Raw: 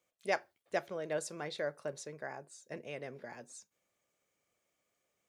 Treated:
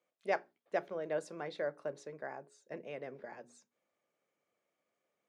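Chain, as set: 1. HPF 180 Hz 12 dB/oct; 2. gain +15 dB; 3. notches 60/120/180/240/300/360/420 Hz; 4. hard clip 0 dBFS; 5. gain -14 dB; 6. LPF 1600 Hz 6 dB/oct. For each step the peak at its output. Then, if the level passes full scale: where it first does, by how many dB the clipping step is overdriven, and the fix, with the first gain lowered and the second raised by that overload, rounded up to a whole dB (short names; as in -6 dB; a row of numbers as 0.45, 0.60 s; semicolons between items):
-17.5, -2.5, -3.0, -3.0, -17.0, -19.5 dBFS; no overload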